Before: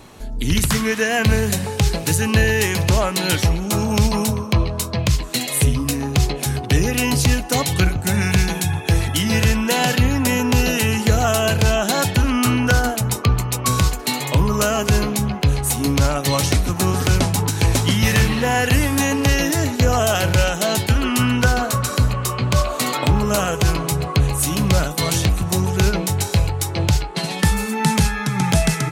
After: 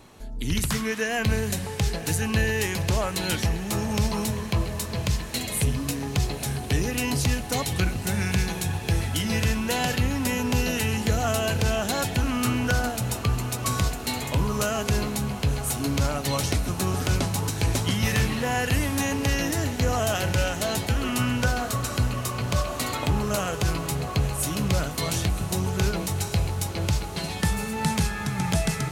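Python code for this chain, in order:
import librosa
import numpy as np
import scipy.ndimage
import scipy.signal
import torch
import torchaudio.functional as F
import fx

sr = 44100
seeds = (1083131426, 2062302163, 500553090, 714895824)

y = fx.echo_diffused(x, sr, ms=1016, feedback_pct=79, wet_db=-14.5)
y = y * librosa.db_to_amplitude(-7.5)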